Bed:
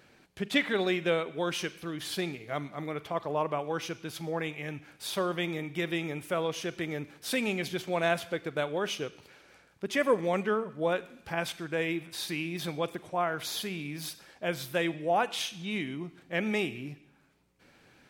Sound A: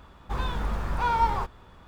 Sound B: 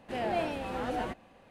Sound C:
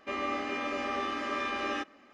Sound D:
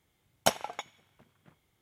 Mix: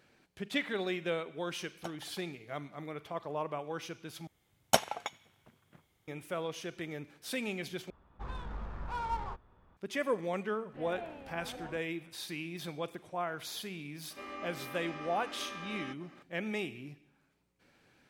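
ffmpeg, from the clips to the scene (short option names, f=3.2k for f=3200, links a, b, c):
-filter_complex "[4:a]asplit=2[a][b];[0:a]volume=-6.5dB[c];[a]highshelf=f=3.9k:g=-10[d];[1:a]adynamicsmooth=sensitivity=6.5:basefreq=2.2k[e];[2:a]lowpass=2.7k[f];[3:a]acompressor=mode=upward:threshold=-35dB:ratio=2.5:attack=3.2:release=140:knee=2.83:detection=peak[g];[c]asplit=3[h][i][j];[h]atrim=end=4.274[k];[b]atrim=end=1.81[l];[i]atrim=start=6.076:end=7.904[m];[e]atrim=end=1.87,asetpts=PTS-STARTPTS,volume=-12dB[n];[j]atrim=start=9.766[o];[d]atrim=end=1.81,asetpts=PTS-STARTPTS,volume=-17.5dB,afade=t=in:d=0.004:c=hsin,afade=t=out:st=1.806:d=0.004:c=hsin,adelay=1380[p];[f]atrim=end=1.5,asetpts=PTS-STARTPTS,volume=-13dB,afade=t=in:d=0.004:c=hsin,afade=t=out:st=1.496:d=0.004:c=hsin,adelay=10650[q];[g]atrim=end=2.13,asetpts=PTS-STARTPTS,volume=-11dB,afade=t=in:d=0.004:c=hsin,afade=t=out:st=2.126:d=0.004:c=hsin,adelay=14100[r];[k][l]acrossfade=d=0.004:c1=hsin:c2=hsin[s];[s][m]acrossfade=d=0.004:c1=hsin:c2=hsin[t];[t][n]acrossfade=d=0.004:c1=hsin:c2=hsin[u];[u][o]acrossfade=d=0.004:c1=hsin:c2=hsin[v];[v][p][q][r]amix=inputs=4:normalize=0"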